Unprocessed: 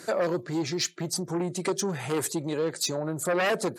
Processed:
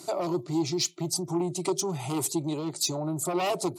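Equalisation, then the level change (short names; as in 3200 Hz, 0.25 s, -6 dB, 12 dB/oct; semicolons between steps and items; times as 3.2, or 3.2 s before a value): fixed phaser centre 330 Hz, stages 8; +2.0 dB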